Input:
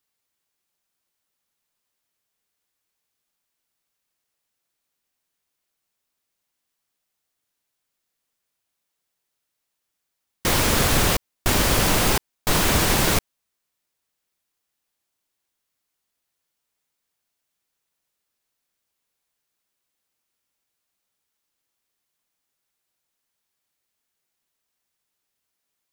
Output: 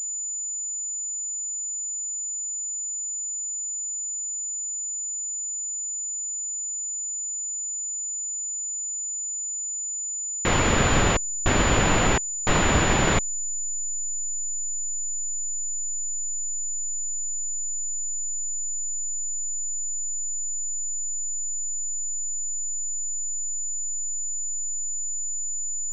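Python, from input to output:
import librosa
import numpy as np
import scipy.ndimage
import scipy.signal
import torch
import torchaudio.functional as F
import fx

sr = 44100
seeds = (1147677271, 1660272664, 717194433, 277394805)

y = fx.delta_hold(x, sr, step_db=-28.5)
y = fx.pwm(y, sr, carrier_hz=7000.0)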